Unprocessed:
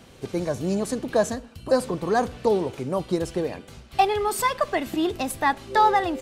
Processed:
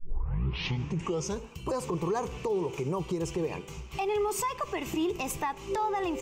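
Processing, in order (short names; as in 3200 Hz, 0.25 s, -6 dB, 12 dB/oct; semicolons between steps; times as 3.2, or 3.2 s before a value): tape start at the beginning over 1.51 s; ripple EQ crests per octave 0.74, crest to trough 11 dB; compressor, threshold -24 dBFS, peak gain reduction 12 dB; limiter -22.5 dBFS, peak gain reduction 8.5 dB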